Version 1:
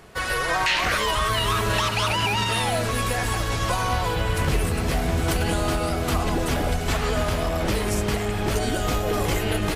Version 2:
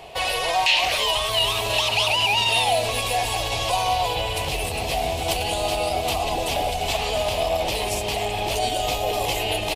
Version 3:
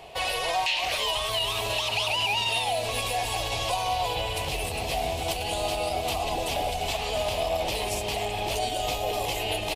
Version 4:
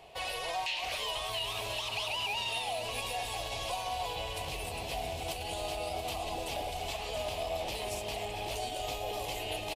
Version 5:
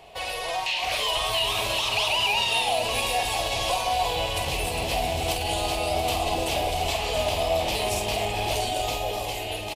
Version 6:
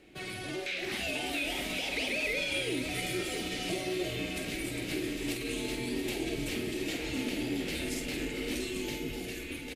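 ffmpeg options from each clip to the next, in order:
-filter_complex "[0:a]acrossover=split=4100[s0][s1];[s0]alimiter=limit=0.075:level=0:latency=1:release=106[s2];[s2][s1]amix=inputs=2:normalize=0,firequalizer=gain_entry='entry(130,0);entry(190,-5);entry(730,15);entry(1400,-7);entry(2600,13);entry(6000,2)':delay=0.05:min_phase=1"
-af "alimiter=limit=0.224:level=0:latency=1:release=243,volume=0.631"
-af "aecho=1:1:677:0.316,volume=0.376"
-filter_complex "[0:a]dynaudnorm=f=160:g=11:m=1.78,asplit=2[s0][s1];[s1]adelay=49,volume=0.447[s2];[s0][s2]amix=inputs=2:normalize=0,volume=1.78"
-af "afreqshift=-370,volume=0.376"

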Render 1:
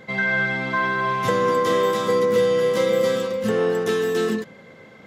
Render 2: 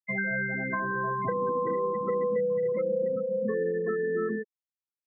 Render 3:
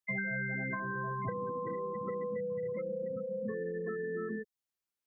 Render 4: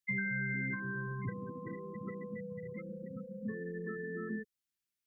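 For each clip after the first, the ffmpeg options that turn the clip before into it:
-filter_complex "[0:a]acrossover=split=210|520[s0][s1][s2];[s0]acompressor=threshold=0.0112:ratio=4[s3];[s1]acompressor=threshold=0.02:ratio=4[s4];[s2]acompressor=threshold=0.0316:ratio=4[s5];[s3][s4][s5]amix=inputs=3:normalize=0,afftfilt=real='re*gte(hypot(re,im),0.0891)':imag='im*gte(hypot(re,im),0.0891)':win_size=1024:overlap=0.75"
-filter_complex "[0:a]acrossover=split=130|3000[s0][s1][s2];[s1]acompressor=threshold=0.00562:ratio=2.5[s3];[s0][s3][s2]amix=inputs=3:normalize=0,volume=1.41"
-af "asuperstop=centerf=730:order=4:qfactor=0.68,volume=1.12"

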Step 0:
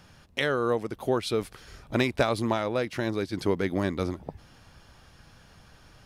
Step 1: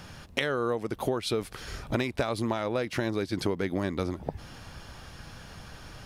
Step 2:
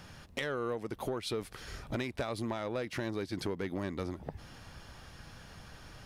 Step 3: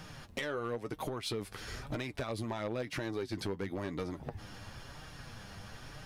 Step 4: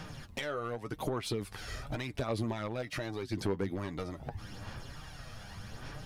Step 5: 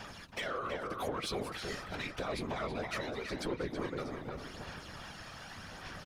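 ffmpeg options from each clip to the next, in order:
-af "acompressor=threshold=0.0178:ratio=5,volume=2.66"
-af "equalizer=f=1900:w=7.3:g=2,asoftclip=type=tanh:threshold=0.106,volume=0.531"
-af "flanger=delay=6.4:depth=3.8:regen=39:speed=0.99:shape=sinusoidal,acompressor=threshold=0.00891:ratio=2.5,volume=63.1,asoftclip=hard,volume=0.0158,volume=2.11"
-af "aphaser=in_gain=1:out_gain=1:delay=1.6:decay=0.42:speed=0.85:type=sinusoidal"
-filter_complex "[0:a]asplit=2[s0][s1];[s1]highpass=f=720:p=1,volume=2.82,asoftclip=type=tanh:threshold=0.0596[s2];[s0][s2]amix=inputs=2:normalize=0,lowpass=f=6800:p=1,volume=0.501,afftfilt=real='hypot(re,im)*cos(2*PI*random(0))':imag='hypot(re,im)*sin(2*PI*random(1))':win_size=512:overlap=0.75,asplit=2[s3][s4];[s4]adelay=325,lowpass=f=2400:p=1,volume=0.668,asplit=2[s5][s6];[s6]adelay=325,lowpass=f=2400:p=1,volume=0.32,asplit=2[s7][s8];[s8]adelay=325,lowpass=f=2400:p=1,volume=0.32,asplit=2[s9][s10];[s10]adelay=325,lowpass=f=2400:p=1,volume=0.32[s11];[s3][s5][s7][s9][s11]amix=inputs=5:normalize=0,volume=1.5"

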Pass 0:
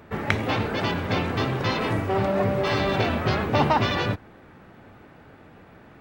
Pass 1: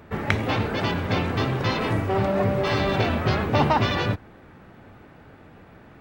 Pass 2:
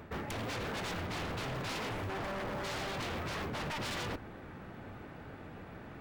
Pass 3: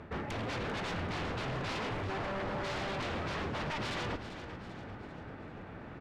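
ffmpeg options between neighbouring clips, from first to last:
-af "lowshelf=f=120:g=4"
-af "areverse,acompressor=threshold=0.0316:ratio=6,areverse,aeval=exprs='0.0224*(abs(mod(val(0)/0.0224+3,4)-2)-1)':c=same"
-af "adynamicsmooth=sensitivity=3:basefreq=5700,aecho=1:1:392|784|1176|1568|1960:0.266|0.128|0.0613|0.0294|0.0141,volume=1.19"

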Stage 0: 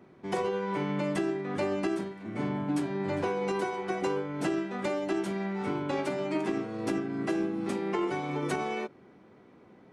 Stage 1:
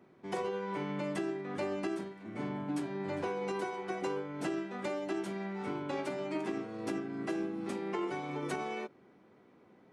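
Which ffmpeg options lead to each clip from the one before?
-af "lowshelf=f=100:g=-7,volume=0.562"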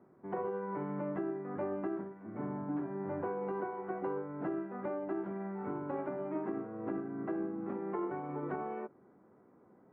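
-af "lowpass=f=1500:w=0.5412,lowpass=f=1500:w=1.3066,volume=0.891"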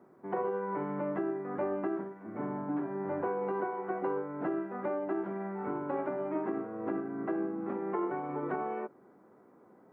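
-af "lowshelf=f=140:g=-12,volume=1.78"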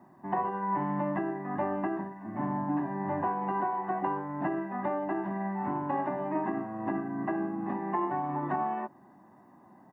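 -af "aecho=1:1:1.1:0.96,volume=1.33"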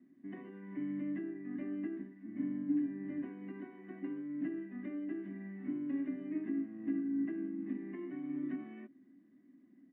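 -filter_complex "[0:a]asplit=3[s0][s1][s2];[s0]bandpass=f=270:t=q:w=8,volume=1[s3];[s1]bandpass=f=2290:t=q:w=8,volume=0.501[s4];[s2]bandpass=f=3010:t=q:w=8,volume=0.355[s5];[s3][s4][s5]amix=inputs=3:normalize=0,volume=1.5"

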